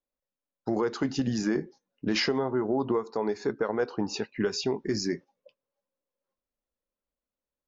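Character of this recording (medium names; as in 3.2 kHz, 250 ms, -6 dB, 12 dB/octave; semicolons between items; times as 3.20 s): noise floor -93 dBFS; spectral tilt -5.0 dB/octave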